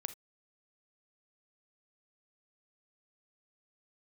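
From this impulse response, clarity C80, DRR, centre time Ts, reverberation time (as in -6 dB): 24.5 dB, 11.0 dB, 5 ms, not exponential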